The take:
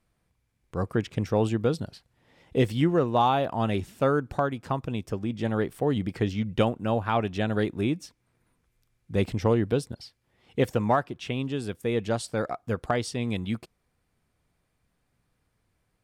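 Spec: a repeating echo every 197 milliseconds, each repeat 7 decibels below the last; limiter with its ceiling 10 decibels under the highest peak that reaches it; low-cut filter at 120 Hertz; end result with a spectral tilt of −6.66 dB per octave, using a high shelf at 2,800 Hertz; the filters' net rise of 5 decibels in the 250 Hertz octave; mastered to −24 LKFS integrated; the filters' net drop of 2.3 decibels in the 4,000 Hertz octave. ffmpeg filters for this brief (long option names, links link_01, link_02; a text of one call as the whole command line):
ffmpeg -i in.wav -af "highpass=120,equalizer=frequency=250:width_type=o:gain=6.5,highshelf=frequency=2800:gain=6.5,equalizer=frequency=4000:width_type=o:gain=-8.5,alimiter=limit=-16dB:level=0:latency=1,aecho=1:1:197|394|591|788|985:0.447|0.201|0.0905|0.0407|0.0183,volume=3.5dB" out.wav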